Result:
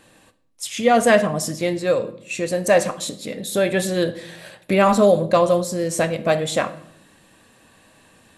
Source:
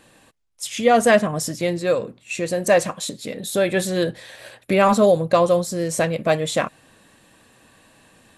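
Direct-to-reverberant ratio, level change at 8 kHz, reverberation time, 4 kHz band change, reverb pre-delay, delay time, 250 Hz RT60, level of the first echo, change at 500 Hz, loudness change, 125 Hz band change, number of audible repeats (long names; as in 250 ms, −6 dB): 11.5 dB, 0.0 dB, 0.70 s, +0.5 dB, 10 ms, no echo audible, 1.1 s, no echo audible, +0.5 dB, +0.5 dB, 0.0 dB, no echo audible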